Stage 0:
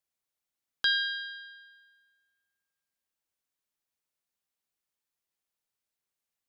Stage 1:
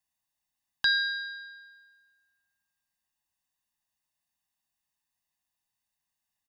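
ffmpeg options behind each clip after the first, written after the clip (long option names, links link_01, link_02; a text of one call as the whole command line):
ffmpeg -i in.wav -af "aecho=1:1:1.1:0.93" out.wav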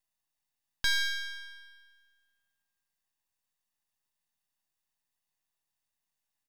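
ffmpeg -i in.wav -filter_complex "[0:a]asplit=2[link_01][link_02];[link_02]alimiter=limit=-21dB:level=0:latency=1,volume=0dB[link_03];[link_01][link_03]amix=inputs=2:normalize=0,aeval=exprs='max(val(0),0)':channel_layout=same,volume=-3.5dB" out.wav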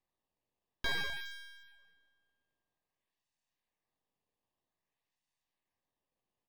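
ffmpeg -i in.wav -filter_complex "[0:a]acrossover=split=4500[link_01][link_02];[link_02]acrusher=samples=13:mix=1:aa=0.000001:lfo=1:lforange=20.8:lforate=0.52[link_03];[link_01][link_03]amix=inputs=2:normalize=0,asuperstop=centerf=1400:order=4:qfactor=4.5,volume=-5dB" out.wav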